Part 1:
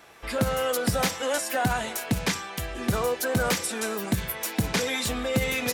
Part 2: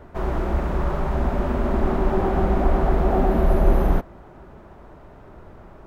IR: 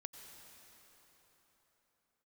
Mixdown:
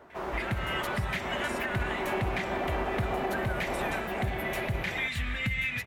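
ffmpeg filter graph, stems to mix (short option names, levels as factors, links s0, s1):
-filter_complex "[0:a]firequalizer=gain_entry='entry(100,0);entry(380,-28);entry(1900,2);entry(5100,-19)':delay=0.05:min_phase=1,adelay=100,volume=1.26,asplit=2[s0][s1];[s1]volume=0.596[s2];[1:a]highpass=f=590:p=1,volume=0.708,asplit=2[s3][s4];[s4]volume=0.631[s5];[2:a]atrim=start_sample=2205[s6];[s2][s6]afir=irnorm=-1:irlink=0[s7];[s5]aecho=0:1:1072:1[s8];[s0][s3][s7][s8]amix=inputs=4:normalize=0,alimiter=limit=0.0891:level=0:latency=1:release=190"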